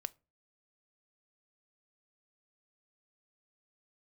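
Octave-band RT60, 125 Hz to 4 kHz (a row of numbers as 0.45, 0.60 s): 0.45, 0.40, 0.35, 0.30, 0.25, 0.20 s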